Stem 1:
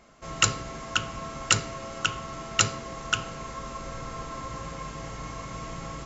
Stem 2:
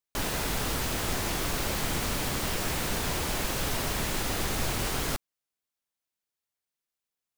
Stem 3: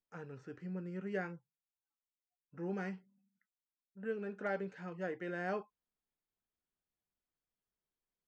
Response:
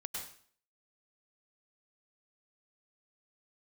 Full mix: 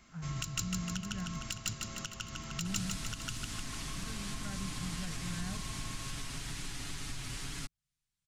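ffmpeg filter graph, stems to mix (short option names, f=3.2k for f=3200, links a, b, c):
-filter_complex "[0:a]aeval=exprs='(tanh(3.55*val(0)+0.6)-tanh(0.6))/3.55':c=same,volume=2.5dB,asplit=2[a][b];[b]volume=-12dB[c];[1:a]lowpass=f=10k:w=0.5412,lowpass=f=10k:w=1.3066,aecho=1:1:7.1:0.55,adelay=2500,volume=0.5dB[d];[2:a]lowshelf=f=200:t=q:w=3:g=13.5,volume=-5.5dB[e];[a][d]amix=inputs=2:normalize=0,equalizer=f=730:w=0.76:g=-8.5,acompressor=threshold=-37dB:ratio=6,volume=0dB[f];[c]aecho=0:1:152|304|456|608|760|912|1064|1216|1368:1|0.58|0.336|0.195|0.113|0.0656|0.0381|0.0221|0.0128[g];[e][f][g]amix=inputs=3:normalize=0,equalizer=f=490:t=o:w=0.63:g=-11.5,acrossover=split=330|3000[h][i][j];[i]acompressor=threshold=-45dB:ratio=6[k];[h][k][j]amix=inputs=3:normalize=0"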